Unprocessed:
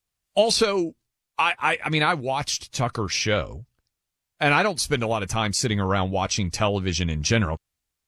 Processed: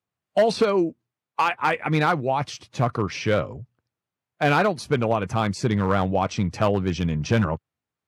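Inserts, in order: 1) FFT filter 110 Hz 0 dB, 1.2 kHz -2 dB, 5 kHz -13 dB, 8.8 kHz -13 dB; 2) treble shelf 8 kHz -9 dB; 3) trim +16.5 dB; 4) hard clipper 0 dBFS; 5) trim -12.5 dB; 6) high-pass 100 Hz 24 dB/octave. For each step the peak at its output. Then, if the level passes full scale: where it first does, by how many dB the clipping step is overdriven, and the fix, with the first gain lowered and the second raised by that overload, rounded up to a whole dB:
-9.0 dBFS, -9.0 dBFS, +7.5 dBFS, 0.0 dBFS, -12.5 dBFS, -7.0 dBFS; step 3, 7.5 dB; step 3 +8.5 dB, step 5 -4.5 dB

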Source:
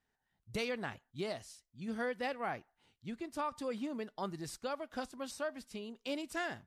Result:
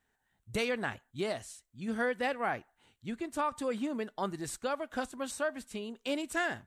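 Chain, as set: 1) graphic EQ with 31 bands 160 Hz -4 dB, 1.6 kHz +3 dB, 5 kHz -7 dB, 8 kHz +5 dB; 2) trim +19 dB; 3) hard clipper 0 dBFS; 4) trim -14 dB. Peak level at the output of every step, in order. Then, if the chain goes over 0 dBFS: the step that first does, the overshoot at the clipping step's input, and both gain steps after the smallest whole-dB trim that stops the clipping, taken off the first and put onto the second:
-24.0 dBFS, -5.0 dBFS, -5.0 dBFS, -19.0 dBFS; nothing clips

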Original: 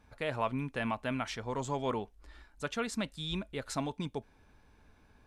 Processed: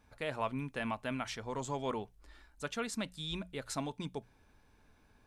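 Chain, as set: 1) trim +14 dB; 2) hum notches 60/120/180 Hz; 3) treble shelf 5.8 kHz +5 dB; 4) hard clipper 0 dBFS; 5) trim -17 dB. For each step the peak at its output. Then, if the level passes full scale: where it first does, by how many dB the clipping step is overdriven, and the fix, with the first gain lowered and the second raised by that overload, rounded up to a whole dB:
-4.0 dBFS, -4.0 dBFS, -4.0 dBFS, -4.0 dBFS, -21.0 dBFS; nothing clips

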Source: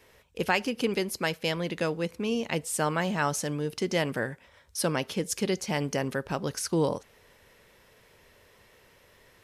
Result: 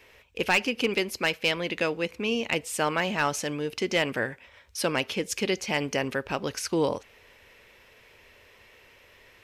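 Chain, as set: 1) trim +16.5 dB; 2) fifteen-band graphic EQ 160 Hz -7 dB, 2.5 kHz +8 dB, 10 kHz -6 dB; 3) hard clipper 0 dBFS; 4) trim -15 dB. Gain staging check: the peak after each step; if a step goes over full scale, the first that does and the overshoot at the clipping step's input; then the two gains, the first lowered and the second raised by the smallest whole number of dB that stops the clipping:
+4.5 dBFS, +9.0 dBFS, 0.0 dBFS, -15.0 dBFS; step 1, 9.0 dB; step 1 +7.5 dB, step 4 -6 dB

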